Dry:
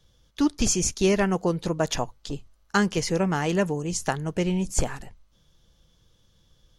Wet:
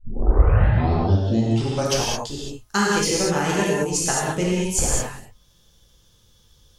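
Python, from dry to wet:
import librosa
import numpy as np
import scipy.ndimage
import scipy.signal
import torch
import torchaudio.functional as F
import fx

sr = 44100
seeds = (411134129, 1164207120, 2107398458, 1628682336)

y = fx.tape_start_head(x, sr, length_s=2.08)
y = fx.high_shelf(y, sr, hz=5200.0, db=11.0)
y = fx.rev_gated(y, sr, seeds[0], gate_ms=240, shape='flat', drr_db=-5.5)
y = F.gain(torch.from_numpy(y), -2.5).numpy()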